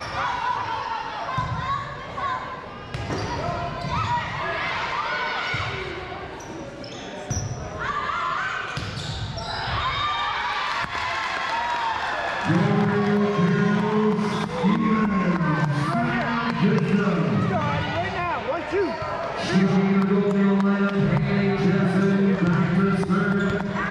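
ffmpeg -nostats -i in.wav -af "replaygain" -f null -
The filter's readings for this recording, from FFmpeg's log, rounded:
track_gain = +5.0 dB
track_peak = 0.246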